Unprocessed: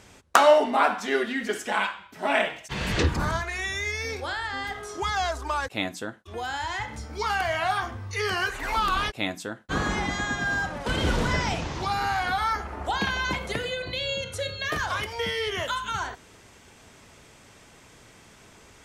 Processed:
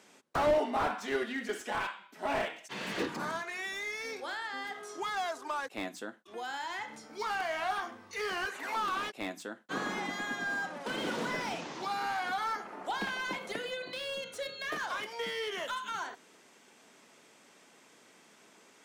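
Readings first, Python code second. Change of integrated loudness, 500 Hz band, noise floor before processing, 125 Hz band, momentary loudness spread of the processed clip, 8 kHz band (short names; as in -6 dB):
-8.5 dB, -8.0 dB, -53 dBFS, -19.0 dB, 7 LU, -9.0 dB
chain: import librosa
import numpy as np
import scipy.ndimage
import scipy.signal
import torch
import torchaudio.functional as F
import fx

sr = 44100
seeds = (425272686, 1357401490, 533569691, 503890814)

y = scipy.signal.sosfilt(scipy.signal.butter(4, 200.0, 'highpass', fs=sr, output='sos'), x)
y = fx.slew_limit(y, sr, full_power_hz=100.0)
y = y * 10.0 ** (-7.0 / 20.0)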